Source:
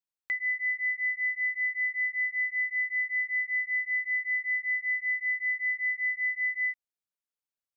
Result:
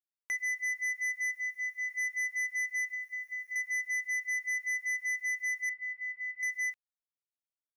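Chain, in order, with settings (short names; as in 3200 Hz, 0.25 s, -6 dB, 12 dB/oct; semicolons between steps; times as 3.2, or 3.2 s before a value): reverb removal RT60 0.94 s; 1.36–1.91 notch 1900 Hz, Q 5.1; 2.86–3.56 compressor 12:1, threshold -40 dBFS, peak gain reduction 13 dB; soft clip -34.5 dBFS, distortion -10 dB; bit-crush 12-bit; 5.69–6.43 air absorption 460 m; gain +4.5 dB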